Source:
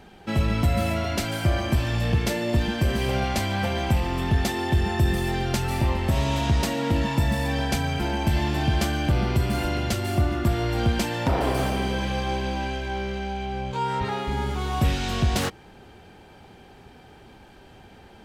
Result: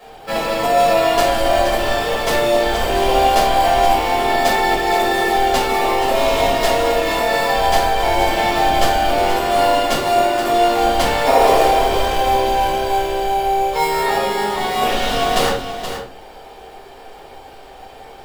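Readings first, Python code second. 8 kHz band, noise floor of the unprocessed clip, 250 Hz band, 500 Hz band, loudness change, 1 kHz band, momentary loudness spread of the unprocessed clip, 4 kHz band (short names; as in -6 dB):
+8.5 dB, -49 dBFS, +1.5 dB, +13.5 dB, +8.5 dB, +15.0 dB, 4 LU, +10.0 dB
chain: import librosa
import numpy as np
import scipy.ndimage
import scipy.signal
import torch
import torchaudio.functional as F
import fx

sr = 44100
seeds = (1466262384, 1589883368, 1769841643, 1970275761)

p1 = scipy.signal.sosfilt(scipy.signal.butter(4, 400.0, 'highpass', fs=sr, output='sos'), x)
p2 = fx.peak_eq(p1, sr, hz=3100.0, db=3.5, octaves=0.55)
p3 = fx.sample_hold(p2, sr, seeds[0], rate_hz=3100.0, jitter_pct=0)
p4 = p2 + (p3 * librosa.db_to_amplitude(-1.0))
p5 = p4 + 10.0 ** (-9.5 / 20.0) * np.pad(p4, (int(474 * sr / 1000.0), 0))[:len(p4)]
p6 = fx.room_shoebox(p5, sr, seeds[1], volume_m3=310.0, walls='furnished', distance_m=5.8)
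y = p6 * librosa.db_to_amplitude(-2.0)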